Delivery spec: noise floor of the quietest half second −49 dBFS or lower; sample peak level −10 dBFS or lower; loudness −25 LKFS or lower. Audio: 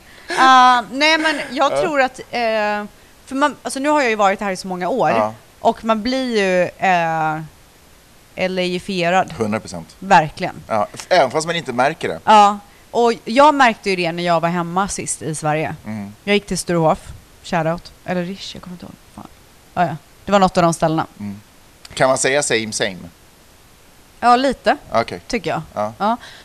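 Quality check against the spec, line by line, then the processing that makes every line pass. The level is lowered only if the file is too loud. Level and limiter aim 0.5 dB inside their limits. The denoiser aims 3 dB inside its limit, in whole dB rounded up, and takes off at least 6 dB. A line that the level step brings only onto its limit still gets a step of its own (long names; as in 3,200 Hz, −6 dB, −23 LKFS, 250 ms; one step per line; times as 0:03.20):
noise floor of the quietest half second −47 dBFS: out of spec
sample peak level −1.5 dBFS: out of spec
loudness −17.0 LKFS: out of spec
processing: level −8.5 dB
brickwall limiter −10.5 dBFS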